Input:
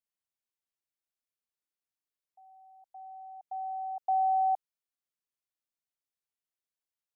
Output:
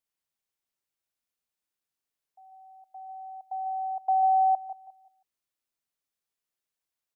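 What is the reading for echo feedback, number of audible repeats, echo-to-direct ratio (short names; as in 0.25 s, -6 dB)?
no steady repeat, 5, -8.5 dB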